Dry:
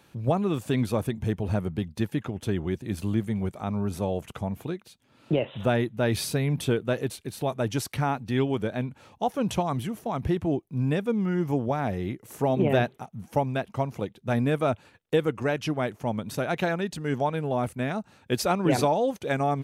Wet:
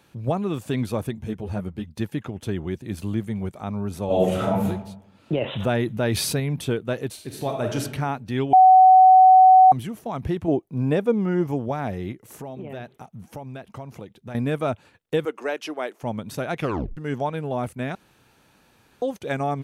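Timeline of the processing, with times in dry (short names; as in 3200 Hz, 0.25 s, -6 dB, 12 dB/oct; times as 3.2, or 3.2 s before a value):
1.21–1.9 ensemble effect
4.06–4.64 reverb throw, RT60 0.85 s, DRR -11.5 dB
5.41–6.4 fast leveller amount 50%
7.12–7.8 reverb throw, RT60 0.81 s, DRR 2 dB
8.53–9.72 bleep 750 Hz -8 dBFS
10.48–11.47 bell 550 Hz +7.5 dB 2.2 oct
12.12–14.35 compressor 4:1, threshold -34 dBFS
15.25–16.03 HPF 320 Hz 24 dB/oct
16.57 tape stop 0.40 s
17.95–19.02 room tone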